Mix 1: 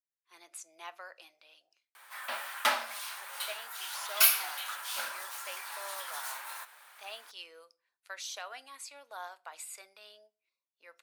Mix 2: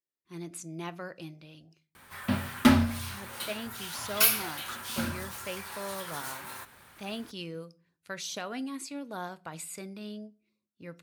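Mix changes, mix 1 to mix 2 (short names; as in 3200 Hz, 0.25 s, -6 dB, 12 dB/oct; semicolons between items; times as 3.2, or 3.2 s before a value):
speech +3.0 dB; master: remove HPF 650 Hz 24 dB/oct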